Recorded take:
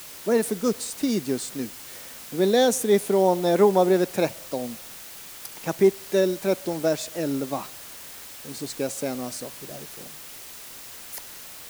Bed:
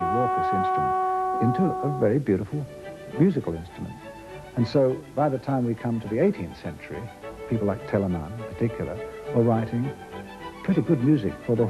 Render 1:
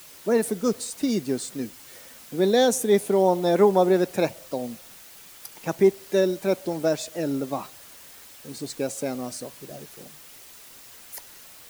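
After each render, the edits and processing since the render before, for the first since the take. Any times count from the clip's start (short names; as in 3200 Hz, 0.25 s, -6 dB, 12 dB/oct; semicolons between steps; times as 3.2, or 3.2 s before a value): denoiser 6 dB, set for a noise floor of -42 dBFS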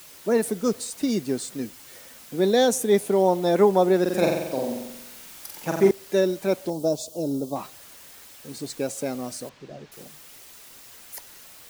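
4.01–5.91 flutter echo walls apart 7.8 m, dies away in 0.94 s; 6.7–7.56 Butterworth band-stop 1900 Hz, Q 0.6; 9.49–9.92 air absorption 160 m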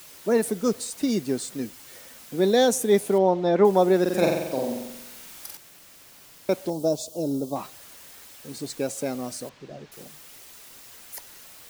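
3.18–3.65 air absorption 160 m; 5.57–6.49 room tone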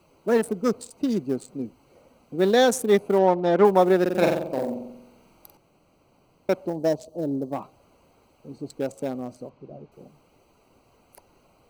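Wiener smoothing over 25 samples; dynamic EQ 1400 Hz, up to +6 dB, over -37 dBFS, Q 0.84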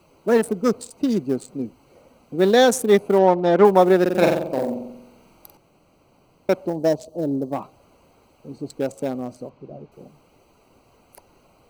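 gain +3.5 dB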